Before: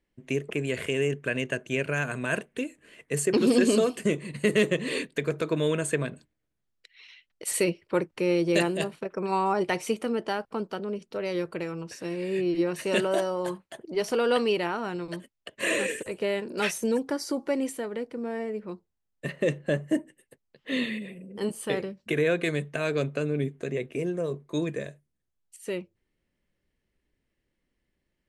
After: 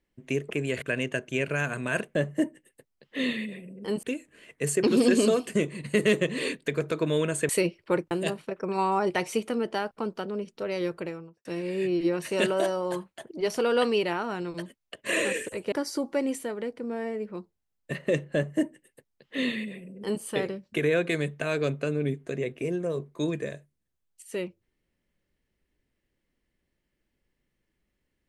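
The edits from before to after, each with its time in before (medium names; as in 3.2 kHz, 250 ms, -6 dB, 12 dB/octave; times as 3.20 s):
0.82–1.20 s: delete
5.99–7.52 s: delete
8.14–8.65 s: delete
11.48–11.99 s: studio fade out
16.26–17.06 s: delete
19.68–21.56 s: copy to 2.53 s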